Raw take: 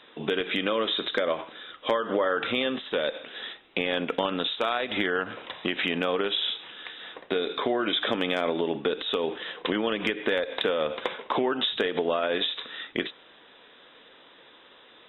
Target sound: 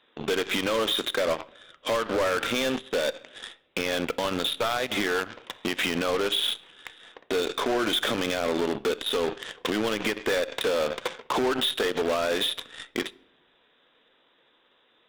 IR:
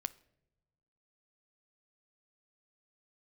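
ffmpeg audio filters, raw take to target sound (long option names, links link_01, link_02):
-filter_complex "[0:a]aeval=exprs='0.251*(cos(1*acos(clip(val(0)/0.251,-1,1)))-cos(1*PI/2))+0.00562*(cos(4*acos(clip(val(0)/0.251,-1,1)))-cos(4*PI/2))+0.0794*(cos(5*acos(clip(val(0)/0.251,-1,1)))-cos(5*PI/2))+0.0891*(cos(7*acos(clip(val(0)/0.251,-1,1)))-cos(7*PI/2))':channel_layout=same,volume=29.5dB,asoftclip=hard,volume=-29.5dB,asplit=2[link_01][link_02];[1:a]atrim=start_sample=2205[link_03];[link_02][link_03]afir=irnorm=-1:irlink=0,volume=6.5dB[link_04];[link_01][link_04]amix=inputs=2:normalize=0"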